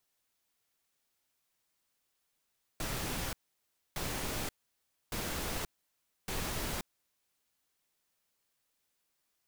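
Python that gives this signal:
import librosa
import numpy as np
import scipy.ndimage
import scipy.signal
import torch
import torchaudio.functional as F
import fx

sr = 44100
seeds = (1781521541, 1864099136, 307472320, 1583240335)

y = fx.noise_burst(sr, seeds[0], colour='pink', on_s=0.53, off_s=0.63, bursts=4, level_db=-36.5)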